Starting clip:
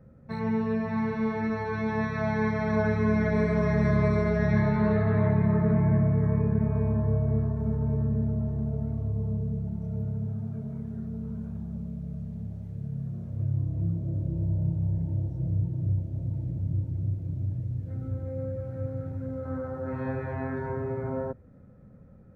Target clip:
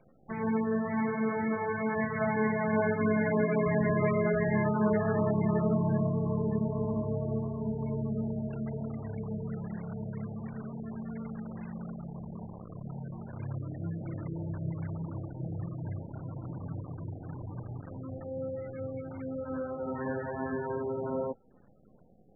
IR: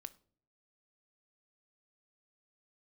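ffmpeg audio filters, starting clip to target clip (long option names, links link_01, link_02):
-af "highpass=190,acrusher=bits=8:dc=4:mix=0:aa=0.000001" -ar 24000 -c:a libmp3lame -b:a 8k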